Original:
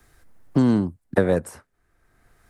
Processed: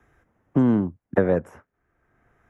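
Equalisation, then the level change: boxcar filter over 10 samples; high-pass 84 Hz 6 dB/octave; 0.0 dB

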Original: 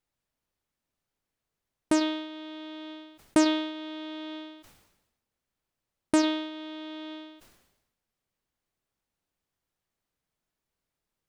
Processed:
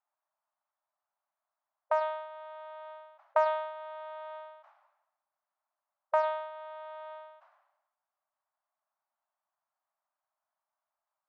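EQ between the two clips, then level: brick-wall FIR high-pass 560 Hz; resonant low-pass 1.1 kHz, resonance Q 1.8; 0.0 dB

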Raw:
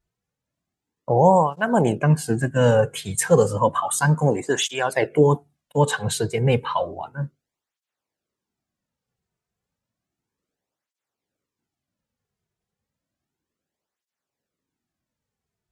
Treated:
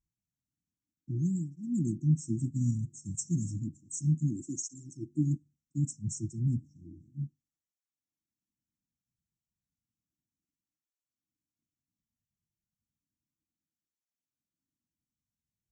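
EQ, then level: brick-wall FIR band-stop 350–5300 Hz; brick-wall FIR low-pass 8.2 kHz; -8.0 dB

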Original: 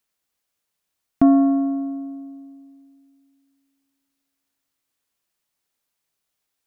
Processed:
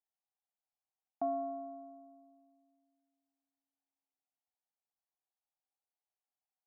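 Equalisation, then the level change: band-pass filter 770 Hz, Q 5.9; -6.0 dB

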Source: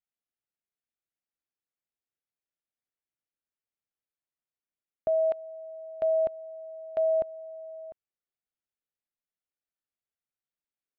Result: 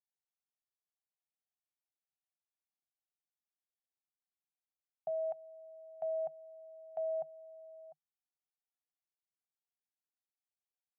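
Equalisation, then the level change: two resonant band-passes 340 Hz, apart 2.3 oct; tilt EQ +2.5 dB/octave; 0.0 dB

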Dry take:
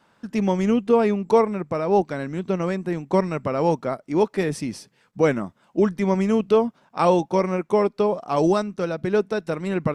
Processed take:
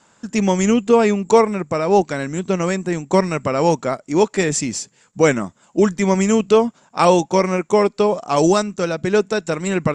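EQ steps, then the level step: resonant low-pass 7.2 kHz, resonance Q 15; dynamic bell 2.5 kHz, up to +4 dB, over -38 dBFS, Q 0.82; +4.0 dB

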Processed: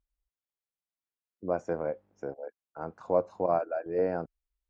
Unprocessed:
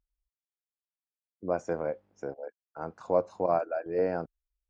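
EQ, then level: treble shelf 3 kHz -8 dB; 0.0 dB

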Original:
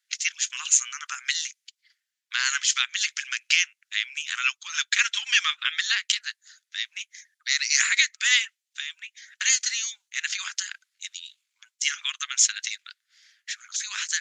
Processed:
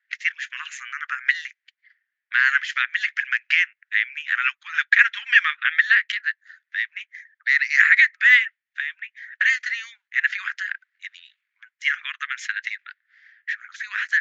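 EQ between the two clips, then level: high-pass 1.2 kHz 12 dB/octave; resonant low-pass 1.8 kHz, resonance Q 4.4; +1.0 dB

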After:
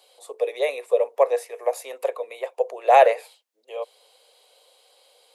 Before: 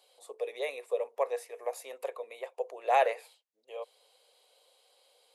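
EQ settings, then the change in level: steep high-pass 250 Hz; dynamic bell 590 Hz, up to +5 dB, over -39 dBFS, Q 1.9; +8.0 dB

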